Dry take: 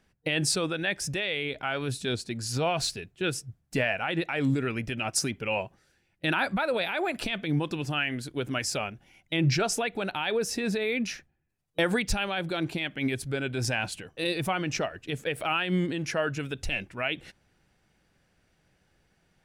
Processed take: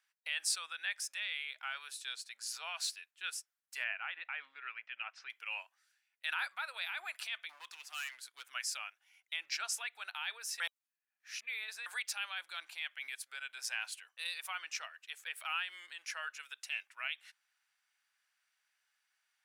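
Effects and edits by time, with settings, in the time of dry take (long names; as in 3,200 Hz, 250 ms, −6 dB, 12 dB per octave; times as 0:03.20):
0:03.84–0:05.30: low-pass filter 3,000 Hz 24 dB per octave
0:07.49–0:08.47: hard clipping −28.5 dBFS
0:10.60–0:11.86: reverse
whole clip: high-pass filter 1,100 Hz 24 dB per octave; high-shelf EQ 9,900 Hz +6 dB; level −8 dB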